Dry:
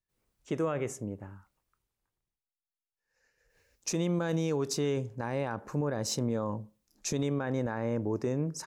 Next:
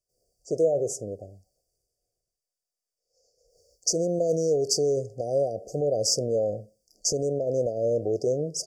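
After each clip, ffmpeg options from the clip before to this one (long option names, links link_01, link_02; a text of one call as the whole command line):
ffmpeg -i in.wav -af "equalizer=frequency=2000:width_type=o:width=2.1:gain=14,afftfilt=real='re*(1-between(b*sr/4096,760,4500))':imag='im*(1-between(b*sr/4096,760,4500))':win_size=4096:overlap=0.75,equalizer=frequency=250:width_type=o:width=1:gain=-8,equalizer=frequency=500:width_type=o:width=1:gain=10,equalizer=frequency=4000:width_type=o:width=1:gain=6,equalizer=frequency=8000:width_type=o:width=1:gain=6" out.wav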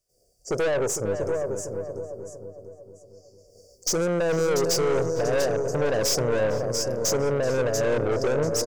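ffmpeg -i in.wav -filter_complex "[0:a]asplit=2[link_01][link_02];[link_02]aecho=0:1:688|1376|2064:0.316|0.0822|0.0214[link_03];[link_01][link_03]amix=inputs=2:normalize=0,aeval=exprs='(tanh(31.6*val(0)+0.3)-tanh(0.3))/31.6':channel_layout=same,asplit=2[link_04][link_05];[link_05]adelay=455,lowpass=frequency=1100:poles=1,volume=-7dB,asplit=2[link_06][link_07];[link_07]adelay=455,lowpass=frequency=1100:poles=1,volume=0.45,asplit=2[link_08][link_09];[link_09]adelay=455,lowpass=frequency=1100:poles=1,volume=0.45,asplit=2[link_10][link_11];[link_11]adelay=455,lowpass=frequency=1100:poles=1,volume=0.45,asplit=2[link_12][link_13];[link_13]adelay=455,lowpass=frequency=1100:poles=1,volume=0.45[link_14];[link_06][link_08][link_10][link_12][link_14]amix=inputs=5:normalize=0[link_15];[link_04][link_15]amix=inputs=2:normalize=0,volume=8.5dB" out.wav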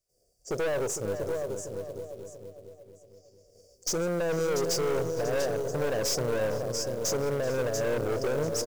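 ffmpeg -i in.wav -af "acrusher=bits=5:mode=log:mix=0:aa=0.000001,volume=-5dB" out.wav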